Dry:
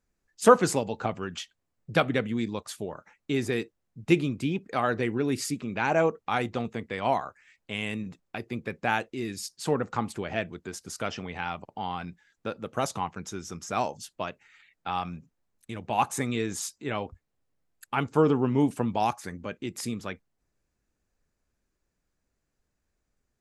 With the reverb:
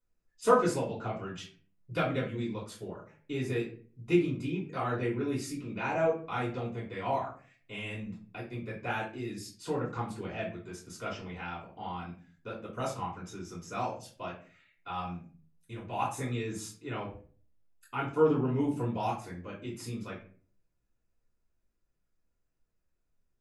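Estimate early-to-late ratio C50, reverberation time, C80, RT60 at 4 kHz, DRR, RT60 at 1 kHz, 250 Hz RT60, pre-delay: 7.0 dB, 0.45 s, 12.5 dB, 0.30 s, −8.5 dB, 0.35 s, 0.60 s, 3 ms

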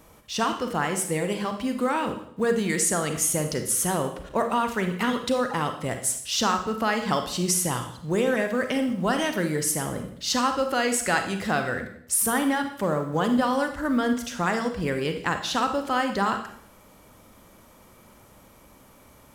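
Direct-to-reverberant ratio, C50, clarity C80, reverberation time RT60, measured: 6.0 dB, 8.0 dB, 11.5 dB, 0.65 s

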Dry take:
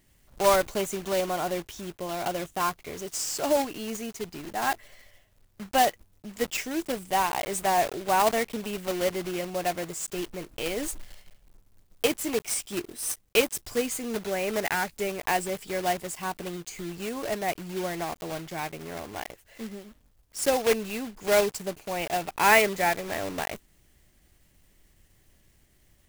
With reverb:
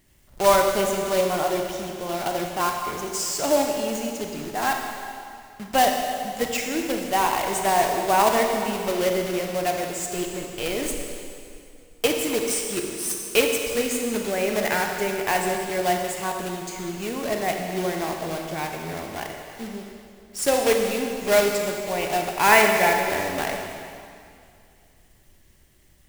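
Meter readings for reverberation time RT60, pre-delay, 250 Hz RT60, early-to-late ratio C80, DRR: 2.4 s, 24 ms, 2.5 s, 4.0 dB, 2.0 dB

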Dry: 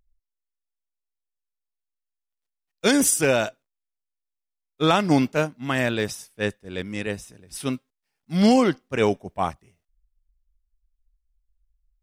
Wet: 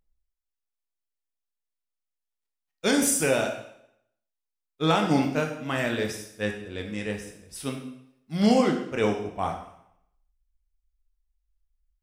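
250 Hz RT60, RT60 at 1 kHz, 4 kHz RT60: 0.65 s, 0.75 s, 0.65 s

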